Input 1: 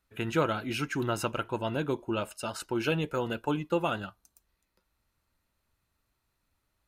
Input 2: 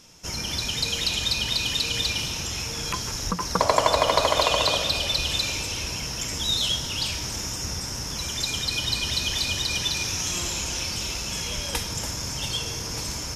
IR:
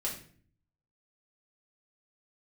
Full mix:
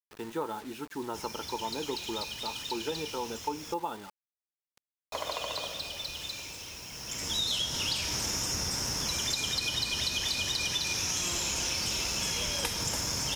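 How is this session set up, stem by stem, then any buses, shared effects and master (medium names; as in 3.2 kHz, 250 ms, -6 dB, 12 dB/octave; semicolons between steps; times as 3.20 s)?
-12.5 dB, 0.00 s, no send, graphic EQ 125/250/500/1000/2000 Hz -7/+7/-5/+8/-6 dB; upward compressor, threshold -43 dBFS; small resonant body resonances 450/860/1800/3500 Hz, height 15 dB, ringing for 35 ms
+2.0 dB, 0.90 s, muted 3.74–5.12 s, no send, bass shelf 130 Hz -7.5 dB; auto duck -15 dB, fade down 1.25 s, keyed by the first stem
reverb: none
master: bit crusher 8-bit; compression, threshold -28 dBFS, peak gain reduction 9 dB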